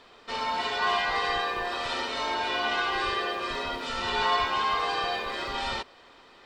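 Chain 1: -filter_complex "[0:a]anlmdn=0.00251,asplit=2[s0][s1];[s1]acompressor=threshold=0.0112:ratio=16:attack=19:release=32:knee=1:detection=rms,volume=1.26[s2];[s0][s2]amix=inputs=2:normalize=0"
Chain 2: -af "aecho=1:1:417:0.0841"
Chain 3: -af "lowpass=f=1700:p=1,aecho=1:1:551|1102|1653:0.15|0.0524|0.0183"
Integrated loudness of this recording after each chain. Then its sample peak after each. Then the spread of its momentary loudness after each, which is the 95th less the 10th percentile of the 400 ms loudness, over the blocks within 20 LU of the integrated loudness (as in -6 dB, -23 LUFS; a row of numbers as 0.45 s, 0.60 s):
-25.5 LUFS, -28.0 LUFS, -30.5 LUFS; -11.0 dBFS, -13.0 dBFS, -15.0 dBFS; 5 LU, 6 LU, 7 LU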